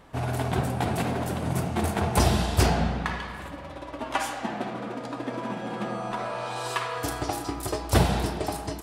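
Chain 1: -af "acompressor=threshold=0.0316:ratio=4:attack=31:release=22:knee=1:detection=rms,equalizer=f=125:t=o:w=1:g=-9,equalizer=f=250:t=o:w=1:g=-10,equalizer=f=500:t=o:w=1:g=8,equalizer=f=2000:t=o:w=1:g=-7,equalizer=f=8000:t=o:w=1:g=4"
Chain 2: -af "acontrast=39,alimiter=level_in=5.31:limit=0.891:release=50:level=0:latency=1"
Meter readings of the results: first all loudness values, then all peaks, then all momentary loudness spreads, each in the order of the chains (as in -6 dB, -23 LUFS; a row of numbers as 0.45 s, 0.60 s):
-31.5 LUFS, -12.0 LUFS; -14.5 dBFS, -1.0 dBFS; 5 LU, 5 LU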